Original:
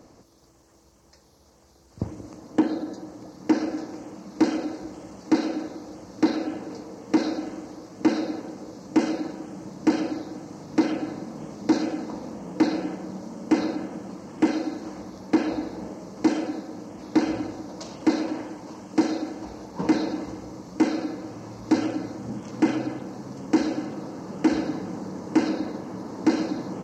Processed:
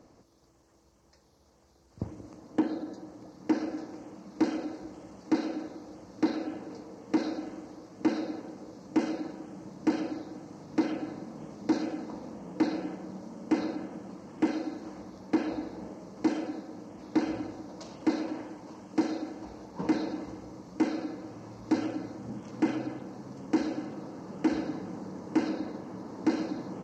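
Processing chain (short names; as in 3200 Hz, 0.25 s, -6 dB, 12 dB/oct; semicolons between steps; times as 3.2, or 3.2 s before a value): high shelf 6700 Hz -6.5 dB; gain -6 dB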